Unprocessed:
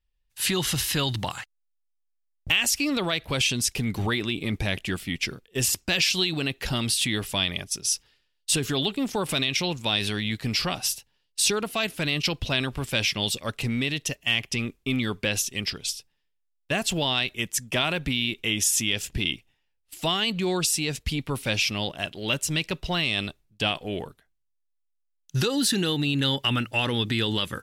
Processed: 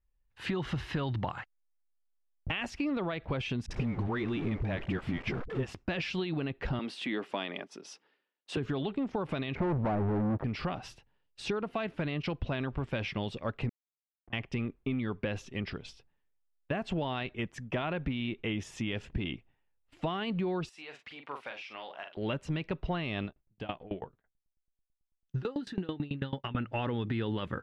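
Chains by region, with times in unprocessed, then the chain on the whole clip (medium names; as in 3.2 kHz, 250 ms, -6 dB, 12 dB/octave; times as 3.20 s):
3.66–5.73 s: jump at every zero crossing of -30.5 dBFS + phase dispersion highs, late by 47 ms, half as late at 340 Hz
6.79–8.57 s: block-companded coder 7-bit + high-pass 240 Hz 24 dB/octave
9.55–10.44 s: inverse Chebyshev low-pass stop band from 3.7 kHz, stop band 60 dB + waveshaping leveller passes 5
13.69–14.33 s: cascade formant filter a + Schmitt trigger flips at -40.5 dBFS + distance through air 380 m
20.69–22.17 s: high-pass 800 Hz + compression 3:1, threshold -33 dBFS + doubling 42 ms -7 dB
23.25–26.56 s: doubling 16 ms -10.5 dB + sawtooth tremolo in dB decaying 9.1 Hz, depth 24 dB
whole clip: low-pass 1.5 kHz 12 dB/octave; compression, threshold -29 dBFS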